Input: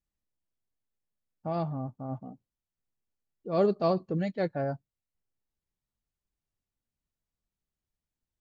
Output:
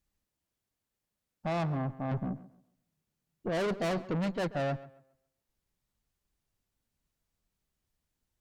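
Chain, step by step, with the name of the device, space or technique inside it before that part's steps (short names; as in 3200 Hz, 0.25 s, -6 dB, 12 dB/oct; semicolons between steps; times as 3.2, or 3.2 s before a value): 2.11–3.49 bell 160 Hz +13.5 dB 0.77 oct; rockabilly slapback (tube stage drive 37 dB, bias 0.4; tape echo 0.136 s, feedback 31%, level -15 dB, low-pass 2300 Hz); gain +8 dB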